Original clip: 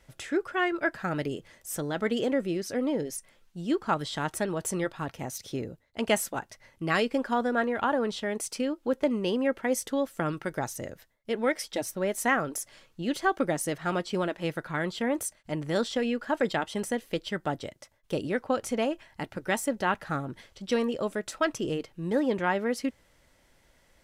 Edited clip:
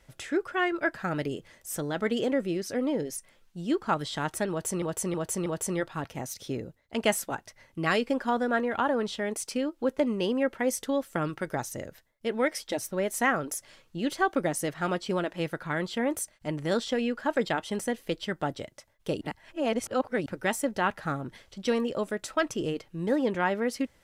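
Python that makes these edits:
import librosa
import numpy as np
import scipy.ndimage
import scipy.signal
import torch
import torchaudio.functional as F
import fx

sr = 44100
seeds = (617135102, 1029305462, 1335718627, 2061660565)

y = fx.edit(x, sr, fx.repeat(start_s=4.5, length_s=0.32, count=4),
    fx.reverse_span(start_s=18.25, length_s=1.05), tone=tone)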